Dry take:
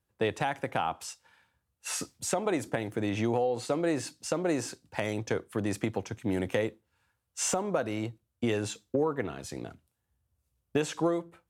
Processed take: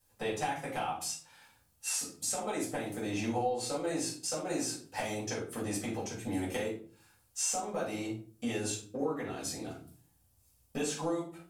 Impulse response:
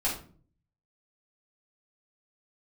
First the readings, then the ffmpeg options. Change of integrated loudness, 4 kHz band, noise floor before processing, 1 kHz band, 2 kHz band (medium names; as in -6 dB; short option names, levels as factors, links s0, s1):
-3.5 dB, 0.0 dB, -81 dBFS, -2.5 dB, -4.0 dB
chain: -filter_complex "[0:a]bass=f=250:g=-3,treble=f=4000:g=12,acompressor=threshold=0.00316:ratio=2[s0];[1:a]atrim=start_sample=2205[s1];[s0][s1]afir=irnorm=-1:irlink=0"